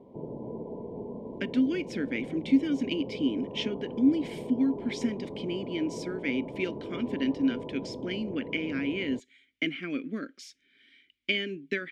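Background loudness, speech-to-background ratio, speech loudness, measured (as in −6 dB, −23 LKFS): −39.5 LKFS, 8.5 dB, −31.0 LKFS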